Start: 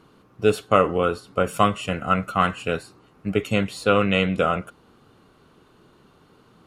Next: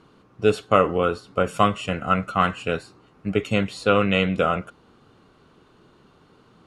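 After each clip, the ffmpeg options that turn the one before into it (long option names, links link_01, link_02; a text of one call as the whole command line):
ffmpeg -i in.wav -af "lowpass=8100" out.wav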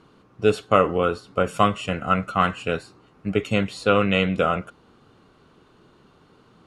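ffmpeg -i in.wav -af anull out.wav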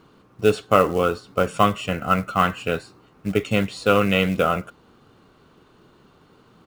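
ffmpeg -i in.wav -af "aresample=22050,aresample=44100,acrusher=bits=6:mode=log:mix=0:aa=0.000001,volume=1dB" out.wav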